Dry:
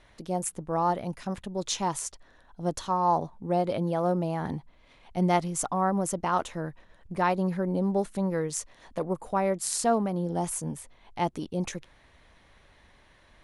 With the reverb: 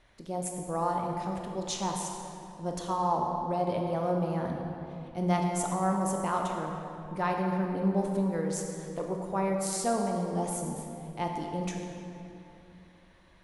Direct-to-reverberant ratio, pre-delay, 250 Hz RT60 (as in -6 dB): 1.0 dB, 17 ms, 3.4 s